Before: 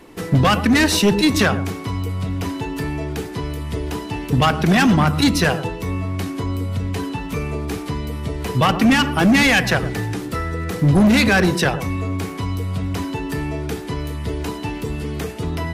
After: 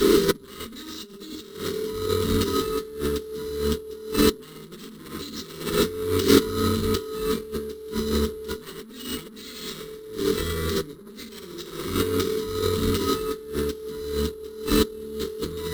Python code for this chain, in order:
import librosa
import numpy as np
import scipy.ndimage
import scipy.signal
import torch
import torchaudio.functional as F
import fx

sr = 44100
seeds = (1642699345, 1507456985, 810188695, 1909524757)

y = fx.lower_of_two(x, sr, delay_ms=0.33)
y = fx.highpass(y, sr, hz=61.0, slope=12, at=(3.31, 5.83))
y = fx.rev_fdn(y, sr, rt60_s=1.0, lf_ratio=0.9, hf_ratio=0.8, size_ms=14.0, drr_db=-5.5)
y = np.repeat(y[::4], 4)[:len(y)]
y = fx.tube_stage(y, sr, drive_db=9.0, bias=0.4)
y = fx.graphic_eq_31(y, sr, hz=(100, 400, 630, 1250, 2500, 4000, 12500), db=(-6, 8, -10, 7, -12, 10, 4))
y = fx.over_compress(y, sr, threshold_db=-29.0, ratio=-0.5)
y = fx.fixed_phaser(y, sr, hz=300.0, stages=4)
y = y * librosa.db_to_amplitude(8.0)